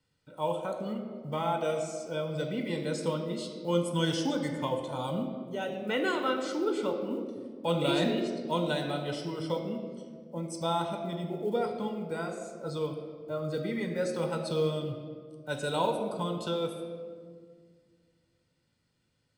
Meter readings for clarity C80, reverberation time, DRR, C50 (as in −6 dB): 7.0 dB, 1.9 s, 3.5 dB, 6.0 dB